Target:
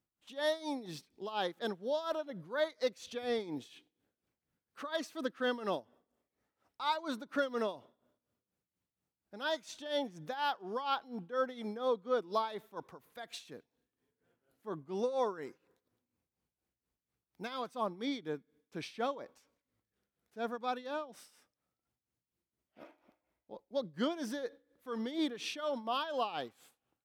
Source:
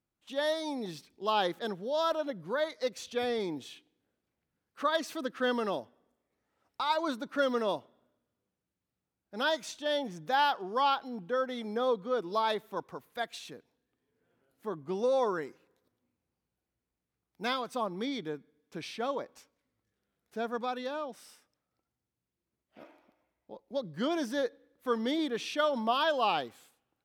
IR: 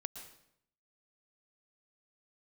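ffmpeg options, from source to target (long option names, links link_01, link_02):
-af "alimiter=limit=-21.5dB:level=0:latency=1:release=324,tremolo=f=4.2:d=0.77"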